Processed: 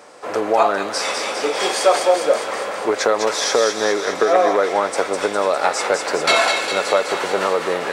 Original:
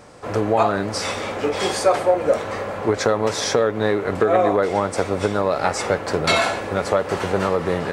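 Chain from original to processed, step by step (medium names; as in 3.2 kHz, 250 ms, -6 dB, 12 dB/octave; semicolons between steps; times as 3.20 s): high-pass 390 Hz 12 dB/octave; feedback echo behind a high-pass 203 ms, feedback 66%, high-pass 1.8 kHz, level -4 dB; trim +3 dB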